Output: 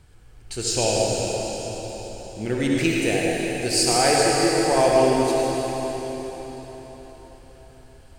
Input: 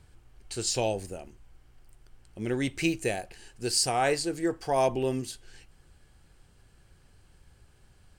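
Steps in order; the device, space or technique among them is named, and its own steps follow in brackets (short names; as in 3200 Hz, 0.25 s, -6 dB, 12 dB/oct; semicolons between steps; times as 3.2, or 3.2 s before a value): cathedral (reverb RT60 4.6 s, pre-delay 59 ms, DRR -4 dB); gain +3.5 dB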